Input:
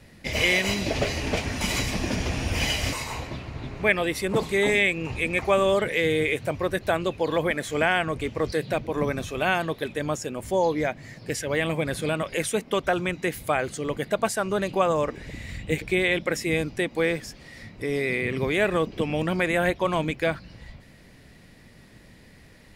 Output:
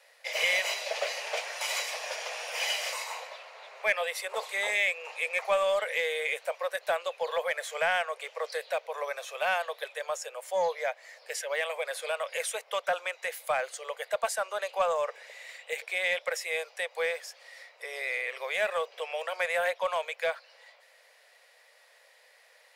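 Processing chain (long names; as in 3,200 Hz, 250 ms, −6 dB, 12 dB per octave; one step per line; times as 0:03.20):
Butterworth high-pass 490 Hz 72 dB per octave
in parallel at −5.5 dB: hard clipping −21 dBFS, distortion −12 dB
on the sum: level −7 dB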